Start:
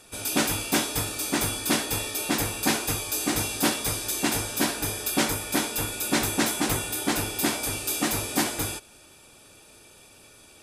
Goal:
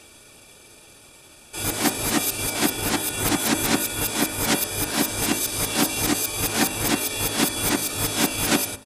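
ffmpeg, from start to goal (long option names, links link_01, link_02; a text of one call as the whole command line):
ffmpeg -i in.wav -af "areverse,atempo=1.2,bandreject=frequency=52.62:width_type=h:width=4,bandreject=frequency=105.24:width_type=h:width=4,bandreject=frequency=157.86:width_type=h:width=4,bandreject=frequency=210.48:width_type=h:width=4,bandreject=frequency=263.1:width_type=h:width=4,bandreject=frequency=315.72:width_type=h:width=4,bandreject=frequency=368.34:width_type=h:width=4,bandreject=frequency=420.96:width_type=h:width=4,bandreject=frequency=473.58:width_type=h:width=4,bandreject=frequency=526.2:width_type=h:width=4,bandreject=frequency=578.82:width_type=h:width=4,bandreject=frequency=631.44:width_type=h:width=4,bandreject=frequency=684.06:width_type=h:width=4,bandreject=frequency=736.68:width_type=h:width=4,bandreject=frequency=789.3:width_type=h:width=4,bandreject=frequency=841.92:width_type=h:width=4,bandreject=frequency=894.54:width_type=h:width=4,bandreject=frequency=947.16:width_type=h:width=4,bandreject=frequency=999.78:width_type=h:width=4,bandreject=frequency=1052.4:width_type=h:width=4,bandreject=frequency=1105.02:width_type=h:width=4,bandreject=frequency=1157.64:width_type=h:width=4,bandreject=frequency=1210.26:width_type=h:width=4,bandreject=frequency=1262.88:width_type=h:width=4,bandreject=frequency=1315.5:width_type=h:width=4,bandreject=frequency=1368.12:width_type=h:width=4,bandreject=frequency=1420.74:width_type=h:width=4,bandreject=frequency=1473.36:width_type=h:width=4,bandreject=frequency=1525.98:width_type=h:width=4,bandreject=frequency=1578.6:width_type=h:width=4,bandreject=frequency=1631.22:width_type=h:width=4,bandreject=frequency=1683.84:width_type=h:width=4,bandreject=frequency=1736.46:width_type=h:width=4,bandreject=frequency=1789.08:width_type=h:width=4,bandreject=frequency=1841.7:width_type=h:width=4,bandreject=frequency=1894.32:width_type=h:width=4,bandreject=frequency=1946.94:width_type=h:width=4,bandreject=frequency=1999.56:width_type=h:width=4,volume=4dB" out.wav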